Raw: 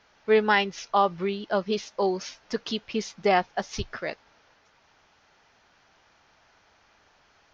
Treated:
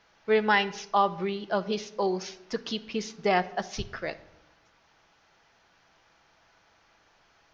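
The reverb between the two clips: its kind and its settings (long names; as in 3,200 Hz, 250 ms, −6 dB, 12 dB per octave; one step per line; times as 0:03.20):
rectangular room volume 2,700 cubic metres, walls furnished, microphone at 0.71 metres
level −2 dB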